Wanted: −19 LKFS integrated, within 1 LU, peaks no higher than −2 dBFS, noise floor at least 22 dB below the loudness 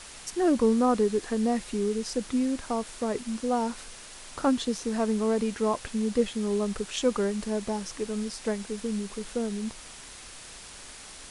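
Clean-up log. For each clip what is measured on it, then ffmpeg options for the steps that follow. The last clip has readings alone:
background noise floor −46 dBFS; target noise floor −51 dBFS; integrated loudness −28.5 LKFS; sample peak −12.5 dBFS; target loudness −19.0 LKFS
→ -af "afftdn=noise_reduction=6:noise_floor=-46"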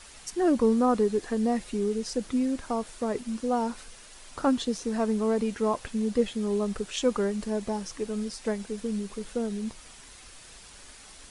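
background noise floor −49 dBFS; target noise floor −51 dBFS
→ -af "afftdn=noise_reduction=6:noise_floor=-49"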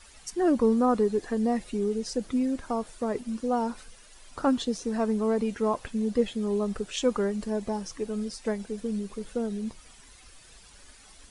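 background noise floor −53 dBFS; integrated loudness −28.5 LKFS; sample peak −12.5 dBFS; target loudness −19.0 LKFS
→ -af "volume=9.5dB"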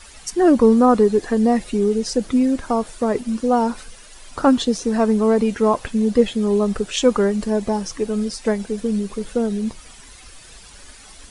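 integrated loudness −19.0 LKFS; sample peak −3.0 dBFS; background noise floor −44 dBFS

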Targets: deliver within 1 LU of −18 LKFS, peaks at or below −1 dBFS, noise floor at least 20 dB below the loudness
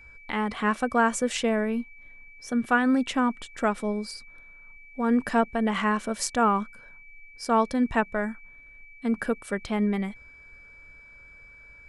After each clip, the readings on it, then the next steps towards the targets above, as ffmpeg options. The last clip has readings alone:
interfering tone 2,300 Hz; level of the tone −48 dBFS; integrated loudness −26.5 LKFS; sample peak −10.0 dBFS; target loudness −18.0 LKFS
→ -af "bandreject=frequency=2300:width=30"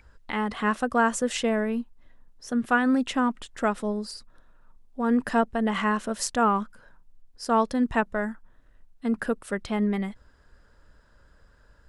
interfering tone none found; integrated loudness −26.5 LKFS; sample peak −10.0 dBFS; target loudness −18.0 LKFS
→ -af "volume=8.5dB"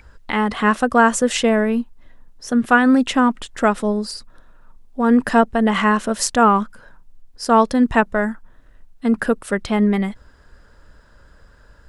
integrated loudness −18.0 LKFS; sample peak −1.5 dBFS; background noise floor −50 dBFS

